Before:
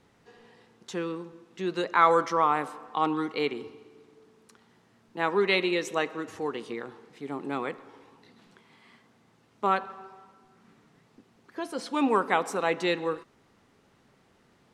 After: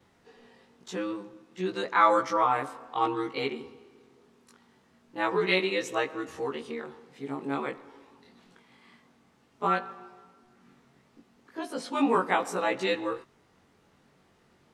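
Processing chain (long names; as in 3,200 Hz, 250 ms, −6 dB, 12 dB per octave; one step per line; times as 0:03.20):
every overlapping window played backwards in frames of 43 ms
level +2.5 dB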